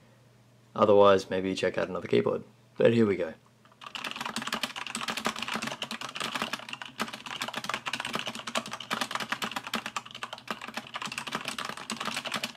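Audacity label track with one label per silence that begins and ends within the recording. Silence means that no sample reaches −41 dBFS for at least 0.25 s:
2.420000	2.790000	silence
3.330000	3.820000	silence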